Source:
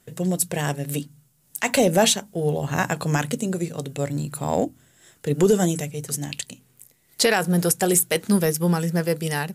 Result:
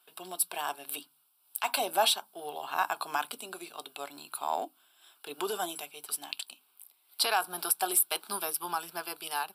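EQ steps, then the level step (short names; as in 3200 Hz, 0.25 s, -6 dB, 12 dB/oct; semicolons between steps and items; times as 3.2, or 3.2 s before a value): HPF 470 Hz 24 dB/oct; fixed phaser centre 1900 Hz, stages 6; dynamic EQ 2800 Hz, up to -5 dB, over -42 dBFS, Q 1.4; 0.0 dB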